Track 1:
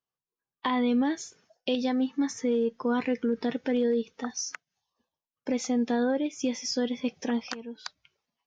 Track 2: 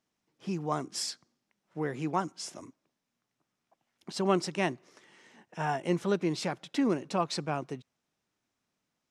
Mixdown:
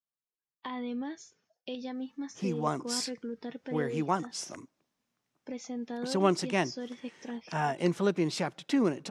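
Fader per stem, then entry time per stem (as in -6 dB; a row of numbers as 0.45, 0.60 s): -11.0, +1.0 dB; 0.00, 1.95 s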